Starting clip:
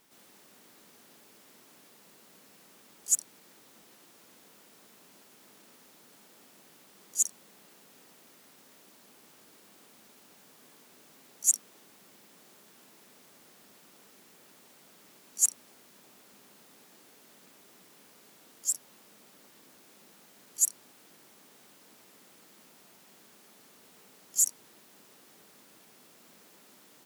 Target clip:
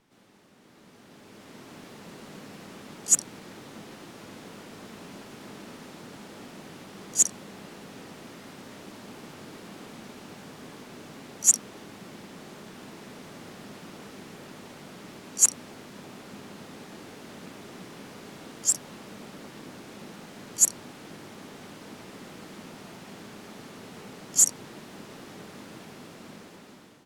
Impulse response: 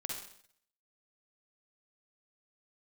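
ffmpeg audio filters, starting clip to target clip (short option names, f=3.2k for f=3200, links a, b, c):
-af "aemphasis=mode=reproduction:type=bsi,dynaudnorm=f=560:g=5:m=15dB"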